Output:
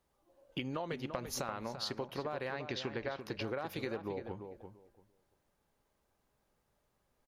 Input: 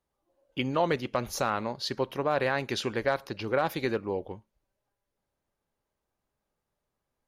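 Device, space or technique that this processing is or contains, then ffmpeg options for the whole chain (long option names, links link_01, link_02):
serial compression, peaks first: -filter_complex "[0:a]acompressor=threshold=-36dB:ratio=6,acompressor=threshold=-49dB:ratio=1.5,asettb=1/sr,asplit=3[link_01][link_02][link_03];[link_01]atrim=end=2.544[link_04];[link_02]atrim=start=2.54:end=3.21,asetpts=PTS-STARTPTS,afade=type=in:duration=0.004:curve=qsin,afade=type=out:start_time=0.666:duration=0.004:curve=qsin,lowpass=frequency=5500:width=0.5412,lowpass=frequency=5500:width=1.3066[link_05];[link_03]atrim=start=3.206[link_06];[link_04][link_05]acrossfade=duration=0.004:curve1=hsin:curve2=qsin[link_07];[link_07][link_06]acrossfade=duration=0.004:curve1=qsin:curve2=hsin,asplit=2[link_08][link_09];[link_09]adelay=341,lowpass=frequency=2100:poles=1,volume=-8dB,asplit=2[link_10][link_11];[link_11]adelay=341,lowpass=frequency=2100:poles=1,volume=0.19,asplit=2[link_12][link_13];[link_13]adelay=341,lowpass=frequency=2100:poles=1,volume=0.19[link_14];[link_08][link_10][link_12][link_14]amix=inputs=4:normalize=0,volume=5dB"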